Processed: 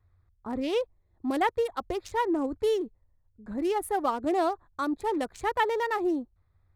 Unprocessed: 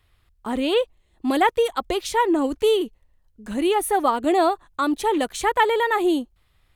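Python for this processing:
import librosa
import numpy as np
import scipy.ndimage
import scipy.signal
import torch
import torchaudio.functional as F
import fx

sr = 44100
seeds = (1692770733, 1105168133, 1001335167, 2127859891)

y = fx.wiener(x, sr, points=15)
y = fx.peak_eq(y, sr, hz=92.0, db=12.0, octaves=0.5)
y = y * librosa.db_to_amplitude(-7.0)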